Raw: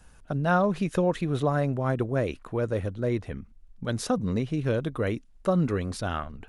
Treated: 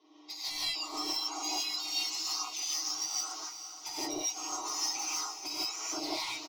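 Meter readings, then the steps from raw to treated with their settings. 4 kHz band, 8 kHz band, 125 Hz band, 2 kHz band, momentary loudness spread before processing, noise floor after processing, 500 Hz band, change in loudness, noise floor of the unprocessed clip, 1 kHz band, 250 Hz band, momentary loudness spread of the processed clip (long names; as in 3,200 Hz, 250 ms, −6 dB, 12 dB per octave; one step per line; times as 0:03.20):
+12.5 dB, +13.5 dB, below −35 dB, −7.5 dB, 7 LU, −49 dBFS, −20.5 dB, −5.5 dB, −54 dBFS, −8.0 dB, −17.5 dB, 6 LU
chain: frequency axis turned over on the octave scale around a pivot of 1,700 Hz
camcorder AGC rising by 8.4 dB per second
Butterworth low-pass 6,100 Hz 48 dB per octave
low-shelf EQ 390 Hz −11 dB
comb filter 6.4 ms, depth 53%
downward compressor 8 to 1, threshold −35 dBFS, peak gain reduction 14.5 dB
high-pass filter 220 Hz 24 dB per octave
gain into a clipping stage and back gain 33.5 dB
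phaser with its sweep stopped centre 340 Hz, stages 8
feedback delay with all-pass diffusion 455 ms, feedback 42%, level −10 dB
reverb whose tail is shaped and stops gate 190 ms rising, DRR −7.5 dB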